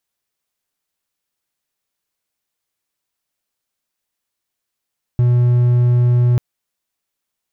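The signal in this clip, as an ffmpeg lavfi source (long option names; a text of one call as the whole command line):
ffmpeg -f lavfi -i "aevalsrc='0.398*(1-4*abs(mod(122*t+0.25,1)-0.5))':duration=1.19:sample_rate=44100" out.wav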